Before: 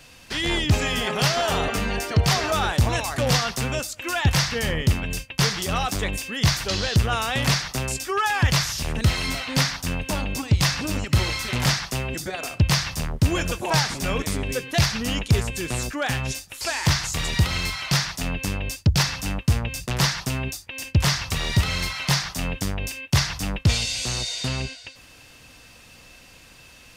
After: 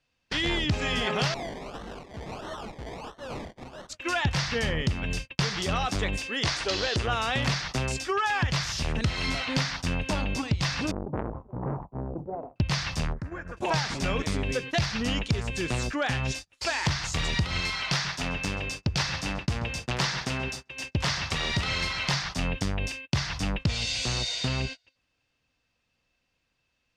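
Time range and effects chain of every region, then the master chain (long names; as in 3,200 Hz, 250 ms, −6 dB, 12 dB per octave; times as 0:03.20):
0:01.34–0:03.89: parametric band 100 Hz −15 dB 1.2 octaves + tube saturation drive 32 dB, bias 0.65 + sample-and-hold swept by an LFO 26×, swing 60% 1.5 Hz
0:06.26–0:07.08: low shelf with overshoot 240 Hz −7.5 dB, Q 1.5 + bad sample-rate conversion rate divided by 2×, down none, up filtered
0:10.91–0:12.56: elliptic low-pass filter 940 Hz, stop band 50 dB + transient designer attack −6 dB, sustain +5 dB + saturating transformer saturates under 790 Hz
0:13.13–0:13.57: high shelf with overshoot 2,300 Hz −11 dB, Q 3 + downward compressor 20 to 1, threshold −30 dBFS
0:17.60–0:22.14: low-shelf EQ 190 Hz −8 dB + feedback echo with a low-pass in the loop 135 ms, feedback 64%, low-pass 3,800 Hz, level −13 dB
whole clip: noise gate −34 dBFS, range −27 dB; low-pass filter 5,500 Hz 12 dB per octave; downward compressor, threshold −23 dBFS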